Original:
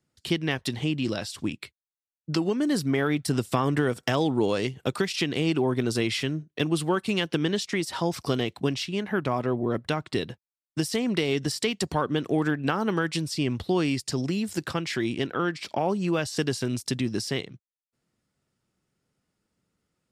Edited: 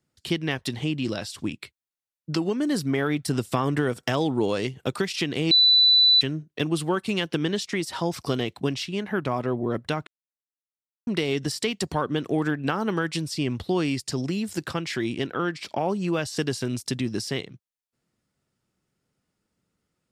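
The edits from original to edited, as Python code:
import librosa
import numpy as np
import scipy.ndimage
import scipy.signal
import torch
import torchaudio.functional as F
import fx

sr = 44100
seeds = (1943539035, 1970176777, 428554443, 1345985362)

y = fx.edit(x, sr, fx.bleep(start_s=5.51, length_s=0.7, hz=3980.0, db=-13.5),
    fx.silence(start_s=10.07, length_s=1.0), tone=tone)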